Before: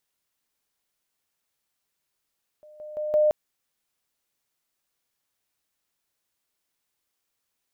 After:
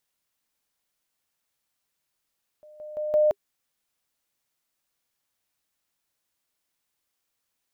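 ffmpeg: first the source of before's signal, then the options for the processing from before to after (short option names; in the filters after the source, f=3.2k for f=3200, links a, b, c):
-f lavfi -i "aevalsrc='pow(10,(-46.5+10*floor(t/0.17))/20)*sin(2*PI*606*t)':d=0.68:s=44100"
-af "bandreject=f=400:w=12"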